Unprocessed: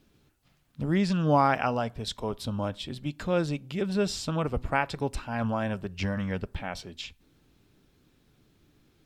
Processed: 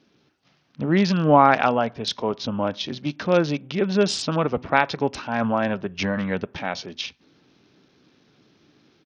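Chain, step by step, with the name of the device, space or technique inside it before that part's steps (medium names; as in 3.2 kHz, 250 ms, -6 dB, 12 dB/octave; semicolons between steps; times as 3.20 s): Bluetooth headset (high-pass 180 Hz 12 dB/octave; level rider gain up to 3.5 dB; resampled via 16 kHz; trim +4.5 dB; SBC 64 kbps 48 kHz)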